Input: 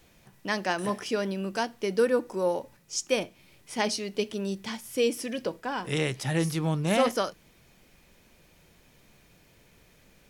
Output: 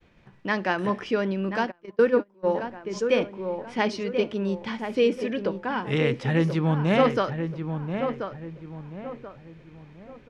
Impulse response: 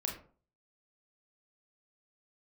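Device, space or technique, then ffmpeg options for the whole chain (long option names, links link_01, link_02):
hearing-loss simulation: -filter_complex "[0:a]asplit=2[link_01][link_02];[link_02]adelay=1033,lowpass=frequency=1800:poles=1,volume=-7dB,asplit=2[link_03][link_04];[link_04]adelay=1033,lowpass=frequency=1800:poles=1,volume=0.37,asplit=2[link_05][link_06];[link_06]adelay=1033,lowpass=frequency=1800:poles=1,volume=0.37,asplit=2[link_07][link_08];[link_08]adelay=1033,lowpass=frequency=1800:poles=1,volume=0.37[link_09];[link_01][link_03][link_05][link_07][link_09]amix=inputs=5:normalize=0,asplit=3[link_10][link_11][link_12];[link_10]afade=type=out:start_time=1.7:duration=0.02[link_13];[link_11]agate=range=-30dB:threshold=-24dB:ratio=16:detection=peak,afade=type=in:start_time=1.7:duration=0.02,afade=type=out:start_time=2.47:duration=0.02[link_14];[link_12]afade=type=in:start_time=2.47:duration=0.02[link_15];[link_13][link_14][link_15]amix=inputs=3:normalize=0,lowpass=2600,agate=range=-33dB:threshold=-57dB:ratio=3:detection=peak,equalizer=frequency=690:width=2.8:gain=-3.5,volume=4.5dB"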